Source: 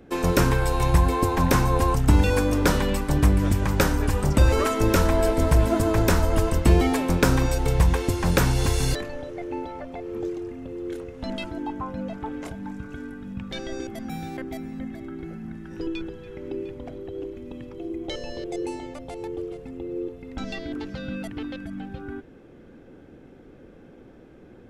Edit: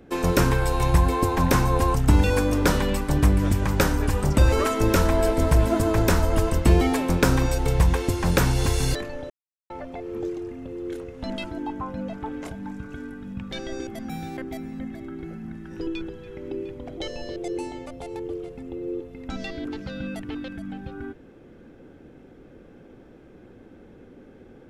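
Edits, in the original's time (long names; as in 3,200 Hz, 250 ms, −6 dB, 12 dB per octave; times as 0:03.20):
0:09.30–0:09.70: silence
0:16.97–0:18.05: remove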